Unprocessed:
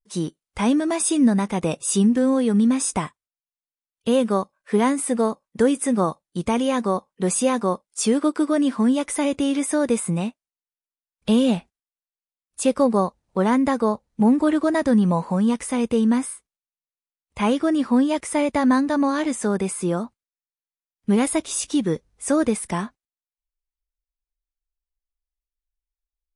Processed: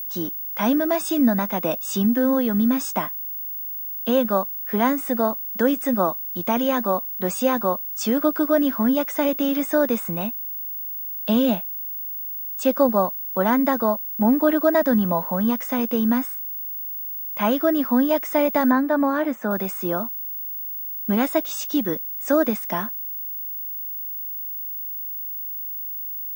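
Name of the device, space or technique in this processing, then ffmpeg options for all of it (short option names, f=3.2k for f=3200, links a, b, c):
old television with a line whistle: -filter_complex "[0:a]highpass=f=200:w=0.5412,highpass=f=200:w=1.3066,equalizer=f=420:t=q:w=4:g=-8,equalizer=f=630:t=q:w=4:g=6,equalizer=f=1.5k:t=q:w=4:g=5,equalizer=f=2.4k:t=q:w=4:g=-3,equalizer=f=4.3k:t=q:w=4:g=-4,lowpass=f=6.6k:w=0.5412,lowpass=f=6.6k:w=1.3066,aeval=exprs='val(0)+0.0398*sin(2*PI*15625*n/s)':c=same,asettb=1/sr,asplit=3[a][b][c];[a]atrim=end=18.714[d];[b]atrim=start=18.71:end=19.51,asetpts=PTS-STARTPTS,afade=t=in:d=0.004:c=qsin,afade=t=out:st=0.796:d=0.004:c=qsin,acrossover=split=2500[e][f];[f]acompressor=threshold=-43dB:ratio=4:attack=1:release=60[g];[e][g]amix=inputs=2:normalize=0[h];[c]atrim=start=19.506[i];[d][h]acrossfade=d=0.004:c1=hsin:c2=qsin[j];[j][i]acrossfade=d=0.004:c1=qsin:c2=hsin"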